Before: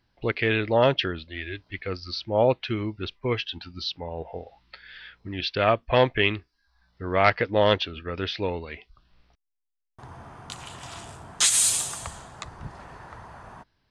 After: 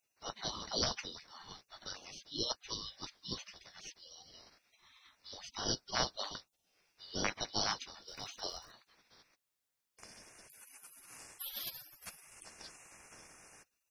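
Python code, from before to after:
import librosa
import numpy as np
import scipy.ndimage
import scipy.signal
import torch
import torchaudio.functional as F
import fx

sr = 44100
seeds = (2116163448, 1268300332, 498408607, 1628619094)

y = fx.band_shuffle(x, sr, order='3412')
y = fx.dmg_crackle(y, sr, seeds[0], per_s=210.0, level_db=-58.0, at=(8.06, 8.7), fade=0.02)
y = fx.spec_gate(y, sr, threshold_db=-30, keep='weak')
y = y * librosa.db_to_amplitude(9.5)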